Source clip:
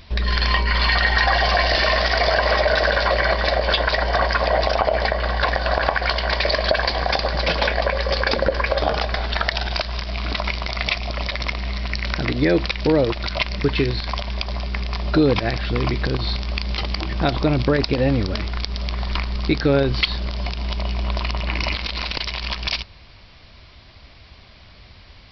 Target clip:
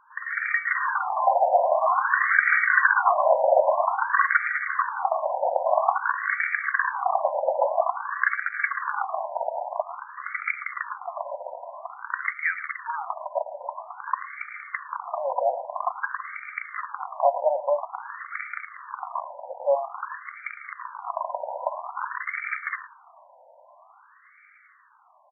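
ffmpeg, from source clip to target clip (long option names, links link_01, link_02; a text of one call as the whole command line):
ffmpeg -i in.wav -filter_complex "[0:a]dynaudnorm=framelen=150:gausssize=21:maxgain=11.5dB,asplit=2[link_01][link_02];[link_02]adelay=110,highpass=300,lowpass=3400,asoftclip=type=hard:threshold=-10.5dB,volume=-13dB[link_03];[link_01][link_03]amix=inputs=2:normalize=0,afftfilt=real='re*between(b*sr/1024,690*pow(1700/690,0.5+0.5*sin(2*PI*0.5*pts/sr))/1.41,690*pow(1700/690,0.5+0.5*sin(2*PI*0.5*pts/sr))*1.41)':imag='im*between(b*sr/1024,690*pow(1700/690,0.5+0.5*sin(2*PI*0.5*pts/sr))/1.41,690*pow(1700/690,0.5+0.5*sin(2*PI*0.5*pts/sr))*1.41)':win_size=1024:overlap=0.75" out.wav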